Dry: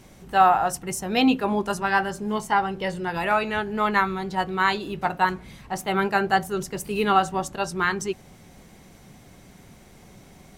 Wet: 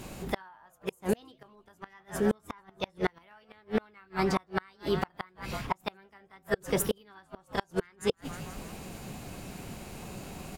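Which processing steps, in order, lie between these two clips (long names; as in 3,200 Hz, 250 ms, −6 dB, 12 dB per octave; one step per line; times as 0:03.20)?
in parallel at +0.5 dB: downward compressor 6 to 1, threshold −32 dBFS, peak gain reduction 18.5 dB
on the sum: echo with shifted repeats 161 ms, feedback 58%, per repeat −120 Hz, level −17 dB
gate with flip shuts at −15 dBFS, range −36 dB
formants moved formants +3 semitones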